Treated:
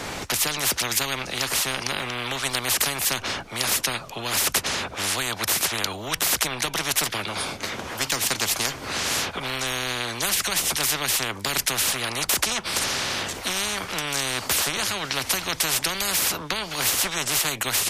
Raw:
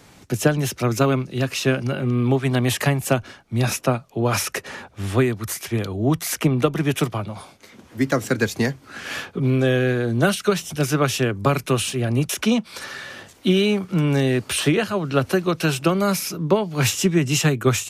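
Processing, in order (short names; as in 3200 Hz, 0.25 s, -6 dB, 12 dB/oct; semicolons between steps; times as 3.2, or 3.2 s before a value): high shelf 7000 Hz -6.5 dB; spectral compressor 10:1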